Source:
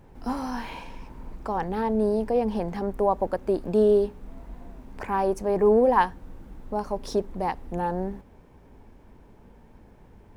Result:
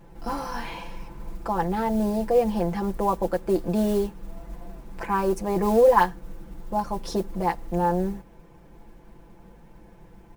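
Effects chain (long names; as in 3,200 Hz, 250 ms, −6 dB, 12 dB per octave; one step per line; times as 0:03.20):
noise that follows the level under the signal 28 dB
comb filter 5.9 ms, depth 88%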